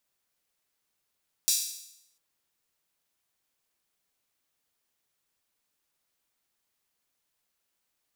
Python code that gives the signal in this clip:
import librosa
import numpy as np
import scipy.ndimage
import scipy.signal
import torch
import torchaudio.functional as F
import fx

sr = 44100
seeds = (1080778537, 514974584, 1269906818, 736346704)

y = fx.drum_hat_open(sr, length_s=0.7, from_hz=5000.0, decay_s=0.79)